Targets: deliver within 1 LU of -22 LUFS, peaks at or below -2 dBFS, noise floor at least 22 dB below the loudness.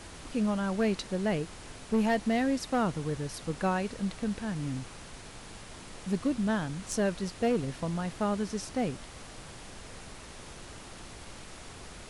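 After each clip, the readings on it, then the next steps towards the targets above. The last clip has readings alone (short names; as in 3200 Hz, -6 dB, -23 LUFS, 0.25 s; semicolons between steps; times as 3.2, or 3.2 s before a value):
clipped 0.6%; flat tops at -21.0 dBFS; noise floor -47 dBFS; noise floor target -54 dBFS; loudness -31.5 LUFS; peak -21.0 dBFS; loudness target -22.0 LUFS
-> clip repair -21 dBFS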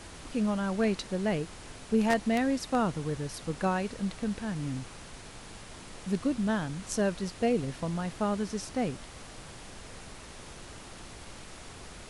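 clipped 0.0%; noise floor -47 dBFS; noise floor target -53 dBFS
-> noise print and reduce 6 dB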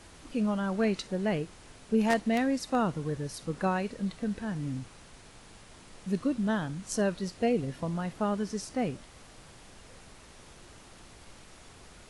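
noise floor -53 dBFS; loudness -31.0 LUFS; peak -12.0 dBFS; loudness target -22.0 LUFS
-> gain +9 dB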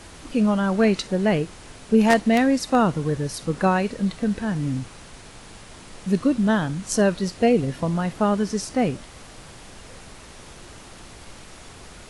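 loudness -22.0 LUFS; peak -3.0 dBFS; noise floor -44 dBFS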